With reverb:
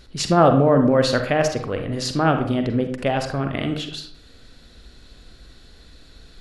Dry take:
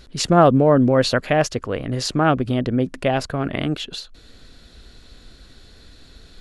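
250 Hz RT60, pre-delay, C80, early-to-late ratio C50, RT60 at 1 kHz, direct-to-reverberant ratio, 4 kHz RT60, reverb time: 0.75 s, 38 ms, 11.0 dB, 7.5 dB, 0.65 s, 5.5 dB, 0.40 s, 0.65 s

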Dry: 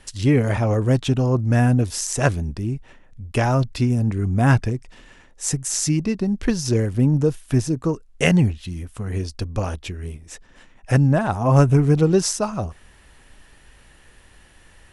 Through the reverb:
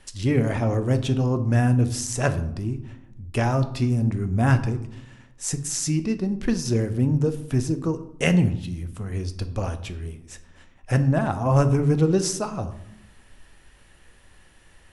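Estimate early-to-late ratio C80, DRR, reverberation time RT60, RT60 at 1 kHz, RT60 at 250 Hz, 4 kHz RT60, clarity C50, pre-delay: 16.0 dB, 9.0 dB, 0.85 s, 0.80 s, 1.2 s, 0.50 s, 13.5 dB, 5 ms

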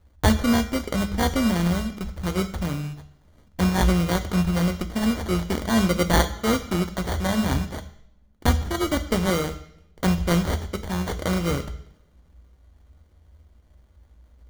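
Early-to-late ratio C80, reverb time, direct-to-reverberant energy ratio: 15.5 dB, 0.75 s, 8.0 dB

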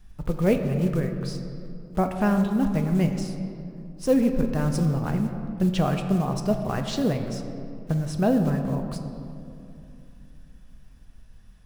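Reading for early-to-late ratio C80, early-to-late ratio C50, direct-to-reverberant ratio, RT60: 8.0 dB, 7.0 dB, 5.0 dB, 2.7 s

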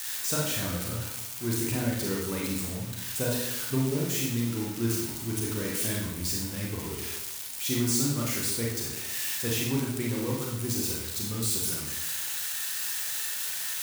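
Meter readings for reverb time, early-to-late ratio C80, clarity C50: 0.80 s, 5.0 dB, 1.0 dB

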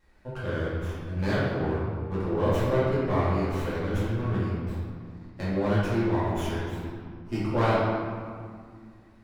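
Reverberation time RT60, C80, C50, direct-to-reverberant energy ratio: 2.1 s, 0.0 dB, -3.0 dB, -10.5 dB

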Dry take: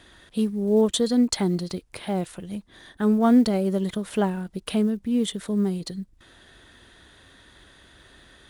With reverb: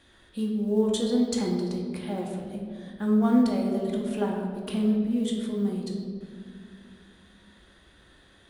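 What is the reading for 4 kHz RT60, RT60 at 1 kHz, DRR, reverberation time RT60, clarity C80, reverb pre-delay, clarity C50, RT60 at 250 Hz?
1.1 s, 1.7 s, -1.5 dB, 2.2 s, 5.0 dB, 4 ms, 3.0 dB, 3.2 s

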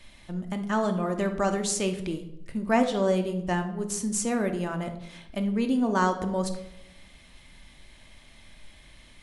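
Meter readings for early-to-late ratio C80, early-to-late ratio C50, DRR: 13.5 dB, 10.0 dB, 5.5 dB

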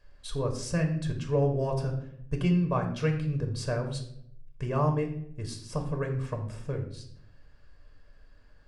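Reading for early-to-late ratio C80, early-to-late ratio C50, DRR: 12.0 dB, 9.0 dB, 3.0 dB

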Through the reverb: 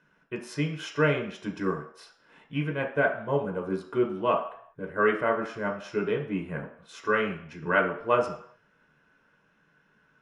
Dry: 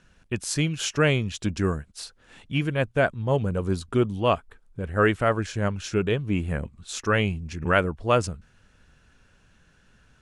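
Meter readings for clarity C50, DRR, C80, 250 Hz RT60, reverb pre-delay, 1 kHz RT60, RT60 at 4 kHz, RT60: 8.5 dB, 0.5 dB, 12.0 dB, 0.40 s, 3 ms, 0.65 s, 0.65 s, 0.65 s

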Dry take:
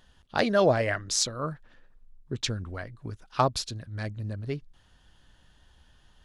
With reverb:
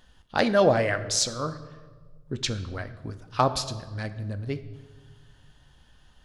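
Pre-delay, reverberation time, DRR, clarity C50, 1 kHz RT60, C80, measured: 4 ms, 1.4 s, 10.0 dB, 13.0 dB, 1.3 s, 15.0 dB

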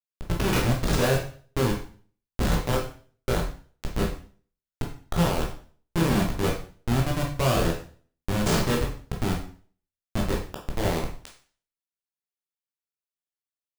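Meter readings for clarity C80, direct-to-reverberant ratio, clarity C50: 11.0 dB, -1.5 dB, 6.5 dB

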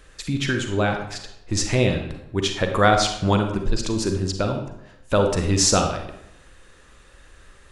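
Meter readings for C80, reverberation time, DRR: 9.0 dB, 0.80 s, 4.5 dB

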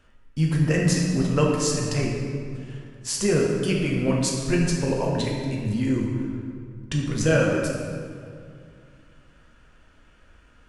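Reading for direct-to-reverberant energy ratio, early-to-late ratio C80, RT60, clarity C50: -2.0 dB, 2.5 dB, 2.3 s, 1.0 dB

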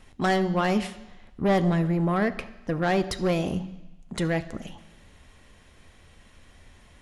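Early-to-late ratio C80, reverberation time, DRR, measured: 17.0 dB, 1.0 s, 10.5 dB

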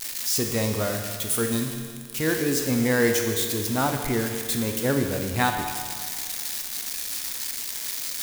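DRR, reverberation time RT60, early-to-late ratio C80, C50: 3.5 dB, 1.9 s, 6.5 dB, 5.5 dB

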